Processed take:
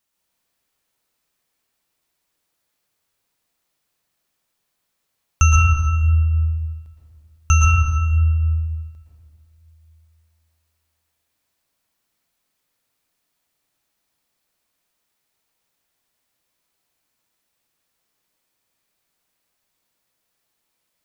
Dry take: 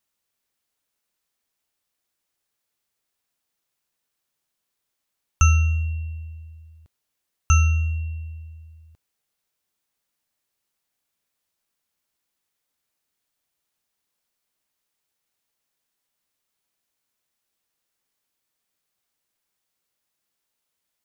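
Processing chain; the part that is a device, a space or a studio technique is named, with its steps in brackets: stairwell (reverb RT60 1.7 s, pre-delay 0.108 s, DRR -3 dB); gain +2 dB

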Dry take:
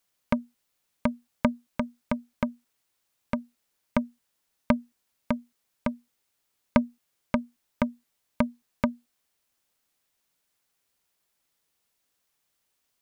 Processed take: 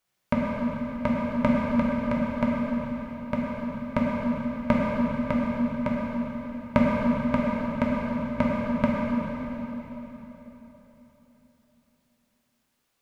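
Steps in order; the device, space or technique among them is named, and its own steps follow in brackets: swimming-pool hall (reverb RT60 4.0 s, pre-delay 3 ms, DRR -5.5 dB; high shelf 4000 Hz -7.5 dB)

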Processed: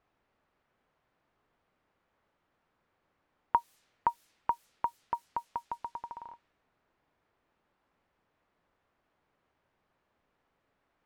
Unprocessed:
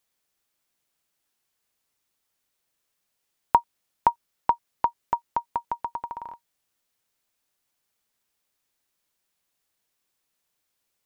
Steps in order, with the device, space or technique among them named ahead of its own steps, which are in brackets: cassette deck with a dynamic noise filter (white noise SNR 24 dB; low-pass opened by the level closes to 1300 Hz, open at -24.5 dBFS); gain -8 dB

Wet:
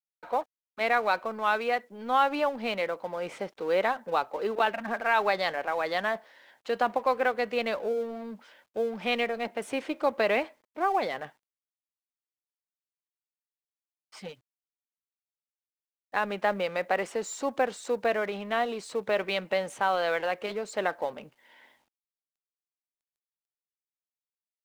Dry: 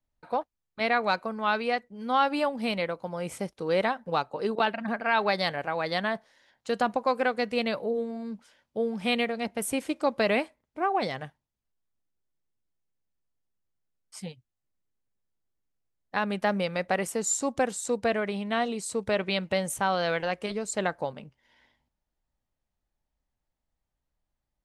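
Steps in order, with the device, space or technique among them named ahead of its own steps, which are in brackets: phone line with mismatched companding (BPF 340–3300 Hz; G.711 law mismatch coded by mu)

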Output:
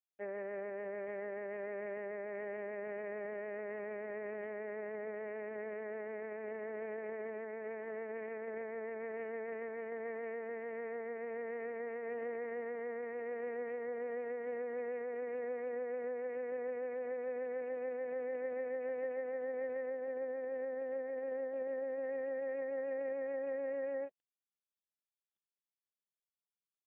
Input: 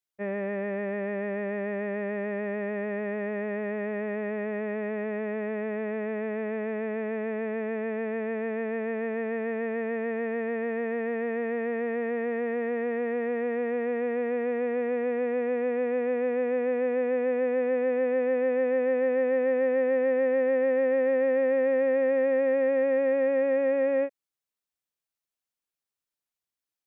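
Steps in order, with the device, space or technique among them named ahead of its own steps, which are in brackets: 19.89–22.04 dynamic EQ 2200 Hz, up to -4 dB, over -43 dBFS, Q 1; voicemail (BPF 360–2600 Hz; compressor 6:1, threshold -27 dBFS, peak gain reduction 4.5 dB; gain -6.5 dB; AMR-NB 4.75 kbps 8000 Hz)

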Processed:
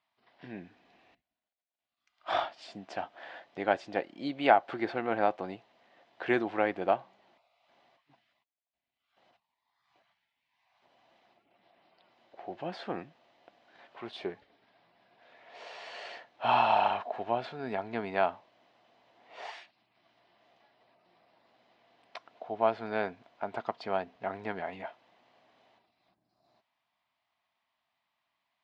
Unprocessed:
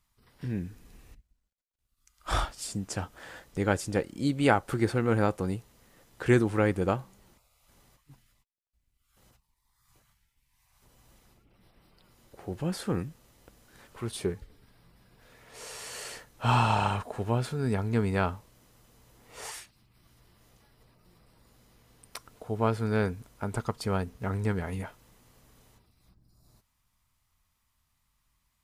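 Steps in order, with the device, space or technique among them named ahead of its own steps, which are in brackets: phone earpiece (speaker cabinet 390–3800 Hz, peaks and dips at 460 Hz -7 dB, 690 Hz +10 dB, 1300 Hz -5 dB)

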